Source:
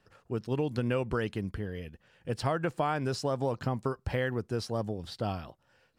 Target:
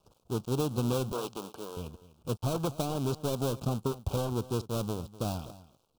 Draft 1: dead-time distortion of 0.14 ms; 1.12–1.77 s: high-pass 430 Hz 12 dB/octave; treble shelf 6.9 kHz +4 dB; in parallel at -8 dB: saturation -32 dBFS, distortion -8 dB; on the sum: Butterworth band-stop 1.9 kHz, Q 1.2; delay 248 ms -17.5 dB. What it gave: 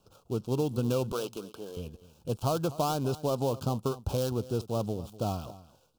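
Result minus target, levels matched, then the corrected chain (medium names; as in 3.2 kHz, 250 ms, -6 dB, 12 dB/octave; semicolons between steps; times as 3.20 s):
dead-time distortion: distortion -10 dB
dead-time distortion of 0.48 ms; 1.12–1.77 s: high-pass 430 Hz 12 dB/octave; treble shelf 6.9 kHz +4 dB; in parallel at -8 dB: saturation -32 dBFS, distortion -8 dB; on the sum: Butterworth band-stop 1.9 kHz, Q 1.2; delay 248 ms -17.5 dB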